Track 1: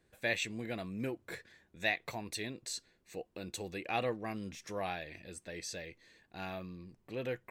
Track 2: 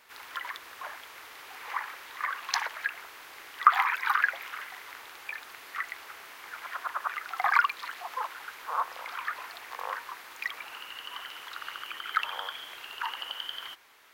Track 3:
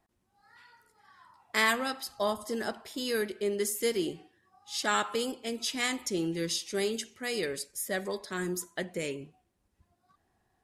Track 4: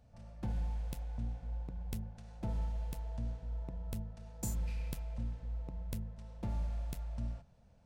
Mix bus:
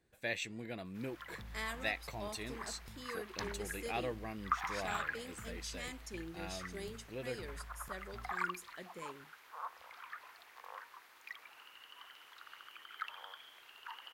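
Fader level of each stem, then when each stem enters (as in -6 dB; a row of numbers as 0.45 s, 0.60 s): -4.5 dB, -14.5 dB, -15.5 dB, -14.0 dB; 0.00 s, 0.85 s, 0.00 s, 0.95 s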